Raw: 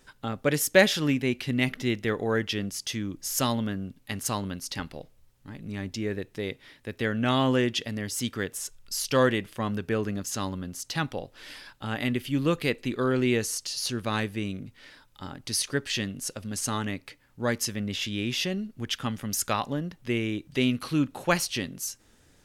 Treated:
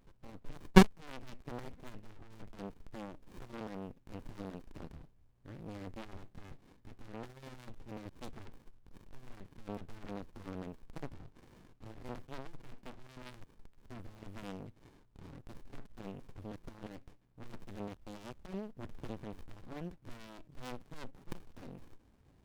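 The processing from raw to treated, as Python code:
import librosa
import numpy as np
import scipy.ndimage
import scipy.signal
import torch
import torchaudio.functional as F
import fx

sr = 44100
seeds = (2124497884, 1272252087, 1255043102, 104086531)

y = fx.cheby_harmonics(x, sr, harmonics=(3, 6, 8), levels_db=(-7, -35, -18), full_scale_db=-4.5)
y = fx.rider(y, sr, range_db=4, speed_s=0.5)
y = fx.running_max(y, sr, window=65)
y = y * librosa.db_to_amplitude(3.0)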